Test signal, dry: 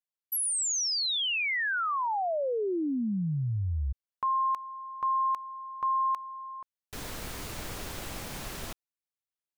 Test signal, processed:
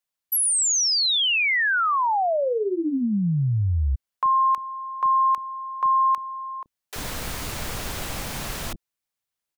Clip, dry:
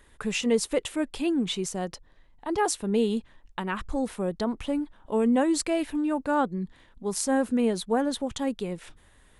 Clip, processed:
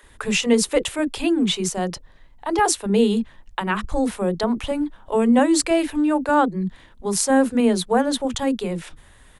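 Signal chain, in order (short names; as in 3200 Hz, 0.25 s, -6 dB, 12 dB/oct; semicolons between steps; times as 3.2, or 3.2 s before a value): bands offset in time highs, lows 30 ms, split 350 Hz; gain +8 dB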